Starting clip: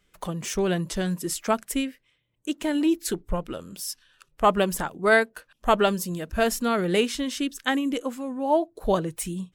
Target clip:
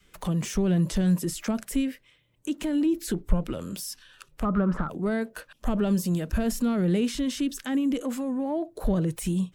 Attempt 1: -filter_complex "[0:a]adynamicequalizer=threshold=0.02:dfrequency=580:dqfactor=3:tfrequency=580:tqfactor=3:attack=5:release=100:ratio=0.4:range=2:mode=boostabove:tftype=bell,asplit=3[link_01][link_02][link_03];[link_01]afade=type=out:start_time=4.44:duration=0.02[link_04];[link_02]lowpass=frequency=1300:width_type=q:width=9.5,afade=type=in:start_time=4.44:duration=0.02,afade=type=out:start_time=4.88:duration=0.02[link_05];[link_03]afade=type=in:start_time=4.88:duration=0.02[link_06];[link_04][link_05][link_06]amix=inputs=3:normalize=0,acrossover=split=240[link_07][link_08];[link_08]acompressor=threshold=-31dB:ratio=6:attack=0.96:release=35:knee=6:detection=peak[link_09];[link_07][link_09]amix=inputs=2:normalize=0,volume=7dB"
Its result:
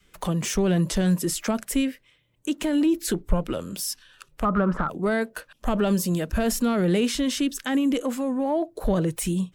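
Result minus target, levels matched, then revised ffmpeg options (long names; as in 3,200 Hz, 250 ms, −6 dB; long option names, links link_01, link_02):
downward compressor: peak gain reduction −7 dB
-filter_complex "[0:a]adynamicequalizer=threshold=0.02:dfrequency=580:dqfactor=3:tfrequency=580:tqfactor=3:attack=5:release=100:ratio=0.4:range=2:mode=boostabove:tftype=bell,asplit=3[link_01][link_02][link_03];[link_01]afade=type=out:start_time=4.44:duration=0.02[link_04];[link_02]lowpass=frequency=1300:width_type=q:width=9.5,afade=type=in:start_time=4.44:duration=0.02,afade=type=out:start_time=4.88:duration=0.02[link_05];[link_03]afade=type=in:start_time=4.88:duration=0.02[link_06];[link_04][link_05][link_06]amix=inputs=3:normalize=0,acrossover=split=240[link_07][link_08];[link_08]acompressor=threshold=-39.5dB:ratio=6:attack=0.96:release=35:knee=6:detection=peak[link_09];[link_07][link_09]amix=inputs=2:normalize=0,volume=7dB"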